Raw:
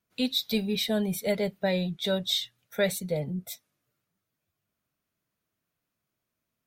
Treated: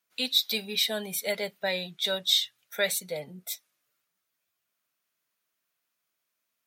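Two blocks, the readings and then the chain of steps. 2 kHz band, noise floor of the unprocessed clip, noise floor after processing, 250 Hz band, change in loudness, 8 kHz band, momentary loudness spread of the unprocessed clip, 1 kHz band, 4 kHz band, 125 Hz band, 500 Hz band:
+3.0 dB, −84 dBFS, −82 dBFS, −11.5 dB, +1.0 dB, +5.0 dB, 9 LU, −0.5 dB, +4.5 dB, −13.0 dB, −4.0 dB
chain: high-pass filter 1,400 Hz 6 dB per octave
level +5 dB

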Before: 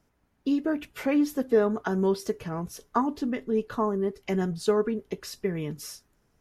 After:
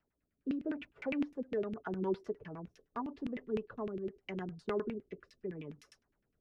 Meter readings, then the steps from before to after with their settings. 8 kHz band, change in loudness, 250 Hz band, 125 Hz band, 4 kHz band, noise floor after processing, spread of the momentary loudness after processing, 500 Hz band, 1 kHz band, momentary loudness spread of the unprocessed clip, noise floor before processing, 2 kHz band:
below −25 dB, −11.5 dB, −11.5 dB, −12.5 dB, −14.0 dB, −84 dBFS, 10 LU, −12.0 dB, −14.0 dB, 11 LU, −70 dBFS, −10.5 dB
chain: first-order pre-emphasis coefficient 0.8
auto-filter low-pass saw down 9.8 Hz 220–2,800 Hz
rotating-speaker cabinet horn 0.8 Hz
level +1 dB

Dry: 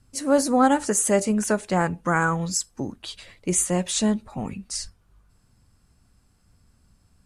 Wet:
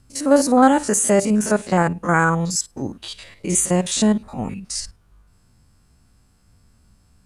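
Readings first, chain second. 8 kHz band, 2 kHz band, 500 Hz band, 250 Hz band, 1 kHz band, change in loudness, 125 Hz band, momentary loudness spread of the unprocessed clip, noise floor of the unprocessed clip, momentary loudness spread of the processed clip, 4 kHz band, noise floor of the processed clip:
+3.5 dB, +4.5 dB, +4.5 dB, +5.0 dB, +4.5 dB, +4.5 dB, +5.0 dB, 14 LU, −63 dBFS, 15 LU, +3.5 dB, −57 dBFS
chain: spectrum averaged block by block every 50 ms
level +5.5 dB

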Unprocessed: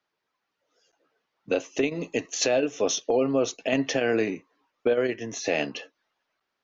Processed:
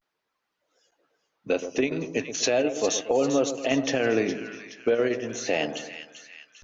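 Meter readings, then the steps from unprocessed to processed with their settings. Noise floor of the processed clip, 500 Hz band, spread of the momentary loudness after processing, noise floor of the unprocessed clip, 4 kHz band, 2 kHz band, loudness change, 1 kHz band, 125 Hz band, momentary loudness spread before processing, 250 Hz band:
−81 dBFS, +0.5 dB, 13 LU, −81 dBFS, +0.5 dB, +0.5 dB, +0.5 dB, +1.0 dB, +0.5 dB, 7 LU, +1.0 dB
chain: echo with a time of its own for lows and highs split 1,300 Hz, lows 121 ms, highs 408 ms, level −10 dB
pitch vibrato 0.38 Hz 65 cents

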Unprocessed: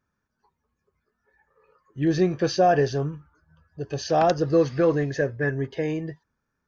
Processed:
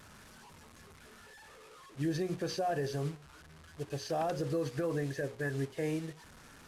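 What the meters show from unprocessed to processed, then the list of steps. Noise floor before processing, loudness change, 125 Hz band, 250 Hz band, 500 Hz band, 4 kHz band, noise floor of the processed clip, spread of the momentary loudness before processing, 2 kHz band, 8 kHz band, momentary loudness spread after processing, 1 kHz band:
−80 dBFS, −12.0 dB, −9.5 dB, −11.0 dB, −13.0 dB, −9.0 dB, −56 dBFS, 13 LU, −10.5 dB, can't be measured, 21 LU, −13.5 dB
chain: linear delta modulator 64 kbit/s, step −35.5 dBFS
mains-hum notches 60/120/180/240/300/360/420/480/540 Hz
brickwall limiter −20 dBFS, peak gain reduction 10 dB
expander for the loud parts 1.5 to 1, over −41 dBFS
level −5 dB

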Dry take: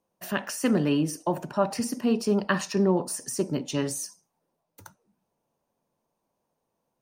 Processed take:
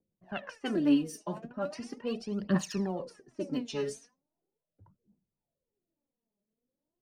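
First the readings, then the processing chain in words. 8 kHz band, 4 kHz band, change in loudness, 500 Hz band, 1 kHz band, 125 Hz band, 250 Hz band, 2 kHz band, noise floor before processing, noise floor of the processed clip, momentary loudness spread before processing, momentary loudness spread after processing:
−13.5 dB, −7.0 dB, −6.5 dB, −8.5 dB, −10.5 dB, −7.5 dB, −5.0 dB, −9.5 dB, −80 dBFS, below −85 dBFS, 7 LU, 14 LU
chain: rotating-speaker cabinet horn 5.5 Hz, later 1.2 Hz, at 0:00.52
phase shifter 0.39 Hz, delay 5 ms, feedback 75%
low-pass that shuts in the quiet parts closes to 450 Hz, open at −22 dBFS
level −7 dB

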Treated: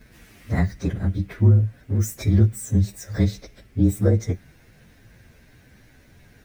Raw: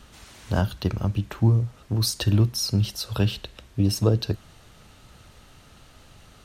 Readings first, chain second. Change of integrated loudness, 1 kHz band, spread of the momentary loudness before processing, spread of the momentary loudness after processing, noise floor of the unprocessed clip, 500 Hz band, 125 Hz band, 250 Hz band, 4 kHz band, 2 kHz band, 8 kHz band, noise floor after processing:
+2.5 dB, can't be measured, 7 LU, 10 LU, −52 dBFS, +1.0 dB, +3.0 dB, +3.0 dB, −14.0 dB, 0.0 dB, −2.5 dB, −54 dBFS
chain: partials spread apart or drawn together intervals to 113%
graphic EQ with 10 bands 125 Hz +5 dB, 250 Hz +5 dB, 500 Hz +3 dB, 1,000 Hz −6 dB, 2,000 Hz +8 dB, 4,000 Hz −4 dB, 8,000 Hz −3 dB

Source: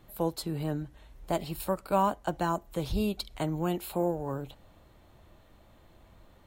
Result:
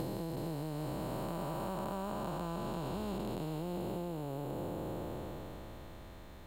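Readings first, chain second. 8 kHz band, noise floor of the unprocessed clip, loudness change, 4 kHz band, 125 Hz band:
−8.0 dB, −59 dBFS, −8.0 dB, −8.5 dB, −4.0 dB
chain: spectrum smeared in time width 1,450 ms
downward compressor 10 to 1, threshold −45 dBFS, peak gain reduction 12.5 dB
level +10 dB

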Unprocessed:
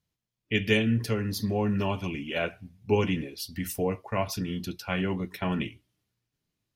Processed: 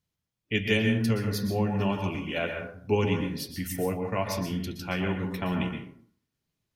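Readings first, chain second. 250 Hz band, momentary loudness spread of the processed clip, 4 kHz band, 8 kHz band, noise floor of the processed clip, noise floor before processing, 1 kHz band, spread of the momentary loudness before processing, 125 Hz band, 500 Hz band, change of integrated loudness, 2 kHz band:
+0.5 dB, 9 LU, 0.0 dB, −0.5 dB, −84 dBFS, −85 dBFS, +0.5 dB, 9 LU, +1.0 dB, 0.0 dB, +0.5 dB, +0.5 dB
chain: dense smooth reverb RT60 0.56 s, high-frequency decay 0.45×, pre-delay 110 ms, DRR 4 dB
level −1 dB

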